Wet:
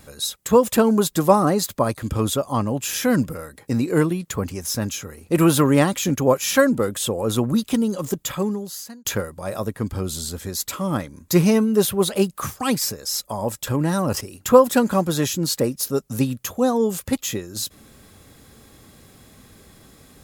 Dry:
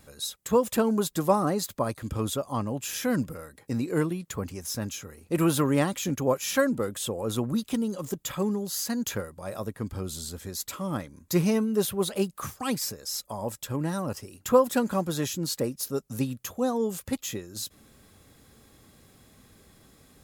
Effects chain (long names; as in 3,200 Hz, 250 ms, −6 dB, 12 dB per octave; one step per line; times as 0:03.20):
0:08.16–0:09.05: fade out
0:13.67–0:14.21: envelope flattener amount 50%
level +7.5 dB